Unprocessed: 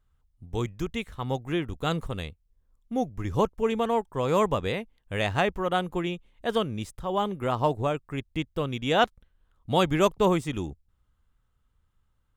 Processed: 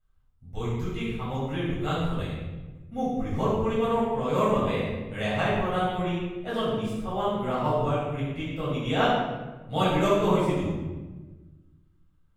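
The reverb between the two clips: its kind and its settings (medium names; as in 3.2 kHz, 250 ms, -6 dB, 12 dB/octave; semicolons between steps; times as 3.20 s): simulated room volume 820 m³, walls mixed, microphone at 7 m; trim -13.5 dB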